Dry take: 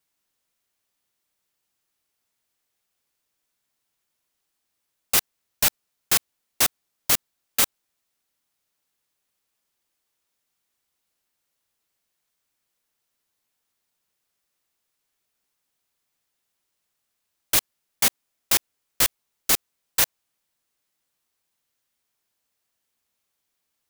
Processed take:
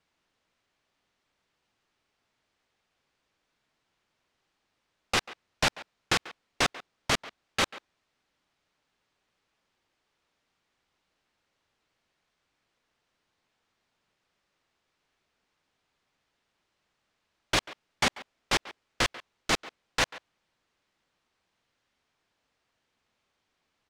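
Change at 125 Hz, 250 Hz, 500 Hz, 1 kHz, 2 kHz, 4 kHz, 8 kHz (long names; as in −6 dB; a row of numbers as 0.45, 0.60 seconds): +2.5, +2.5, +2.5, +2.0, +1.0, −3.0, −12.0 decibels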